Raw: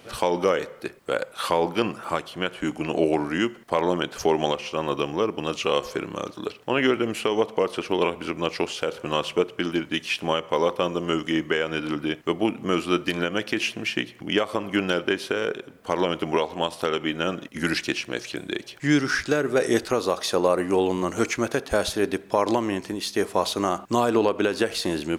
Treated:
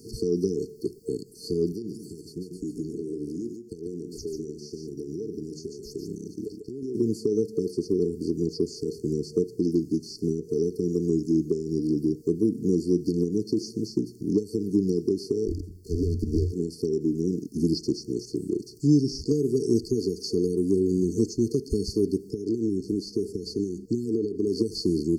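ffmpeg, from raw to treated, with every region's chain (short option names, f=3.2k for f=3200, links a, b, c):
-filter_complex "[0:a]asettb=1/sr,asplit=3[a][b][c];[a]atrim=end=1.724[d];[b]atrim=start=1.72:end=6.95,asetpts=PTS-STARTPTS,afade=t=in:d=0.004:c=qsin,afade=t=out:st=5.226:d=0.004:c=qsin,agate=range=-33dB:threshold=-38dB:ratio=3:release=100:detection=peak,acompressor=threshold=-33dB:ratio=6:attack=3.2:release=140:knee=1:detection=peak,aecho=1:1:144:0.422,atrim=end_sample=230643[e];[c]atrim=start=6.946[f];[d][e]acrossfade=d=0.004:c1=hsin:c2=qsin[g];[g][f]acrossfade=d=0.004:c1=qsin:c2=hsin,asettb=1/sr,asplit=3[h][i][j];[h]atrim=end=15.474[k];[i]atrim=start=15.47:end=16.52,asetpts=PTS-STARTPTS,afade=t=in:d=0.004:c=qsin,afade=t=out:st=1.046:d=0.004:c=qsin,aeval=exprs='max(val(0),0)':c=same,afreqshift=-90[l];[j]atrim=start=16.516[m];[k][l]acrossfade=d=0.004:c1=hsin:c2=qsin[n];[n][m]acrossfade=d=0.004:c1=qsin:c2=hsin,asettb=1/sr,asplit=3[o][p][q];[o]atrim=end=22.314[r];[p]atrim=start=22.31:end=24.47,asetpts=PTS-STARTPTS,afade=t=in:d=0.004:c=qsin,afade=t=out:st=2.156:d=0.004:c=qsin,lowpass=f=3.3k:p=1,acompressor=threshold=-24dB:ratio=5:attack=3.2:release=140:knee=1:detection=peak[s];[q]atrim=start=24.466[t];[r][s]acrossfade=d=0.004:c1=hsin:c2=qsin[u];[u][t]acrossfade=d=0.004:c1=qsin:c2=hsin,acrossover=split=4400[v][w];[w]acompressor=threshold=-53dB:ratio=4:attack=1:release=60[x];[v][x]amix=inputs=2:normalize=0,afftfilt=real='re*(1-between(b*sr/4096,460,4300))':imag='im*(1-between(b*sr/4096,460,4300))':win_size=4096:overlap=0.75,acrossover=split=250|3000[y][z][aa];[z]acompressor=threshold=-30dB:ratio=4[ab];[y][ab][aa]amix=inputs=3:normalize=0,volume=5dB"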